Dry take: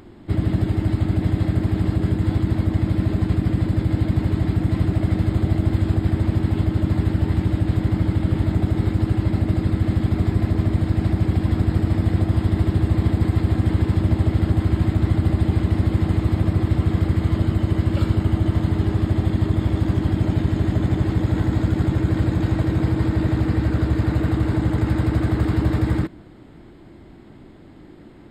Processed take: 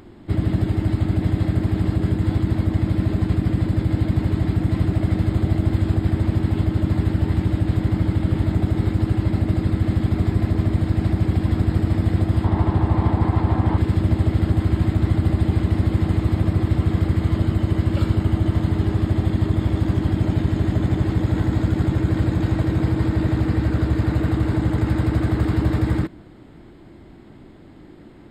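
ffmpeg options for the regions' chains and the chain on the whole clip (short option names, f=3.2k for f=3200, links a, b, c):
-filter_complex "[0:a]asettb=1/sr,asplit=3[a][b][c];[a]atrim=end=12.444[d];[b]atrim=start=12.44:end=13.78,asetpts=PTS-STARTPTS,afade=t=in:d=0.004:c=qsin,afade=t=out:st=1.336:d=0.004:c=qsin,lowpass=f=3.4k:p=1,equalizer=f=910:t=o:w=0.82:g=12.5[e];[c]atrim=start=13.776[f];[d][e]acrossfade=d=0.004:c1=hsin:c2=qsin[g];[g][f]acrossfade=d=0.004:c1=qsin:c2=hsin"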